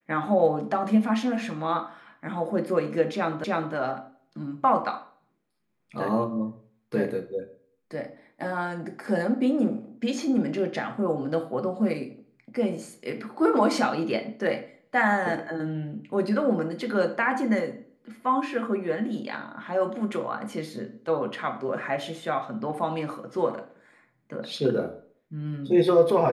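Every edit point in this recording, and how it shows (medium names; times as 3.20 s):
3.44 s: repeat of the last 0.31 s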